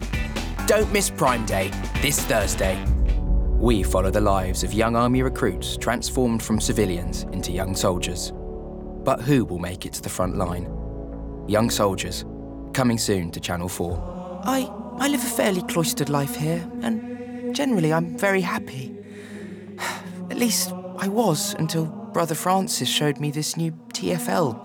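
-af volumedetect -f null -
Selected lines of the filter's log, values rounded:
mean_volume: -23.4 dB
max_volume: -7.2 dB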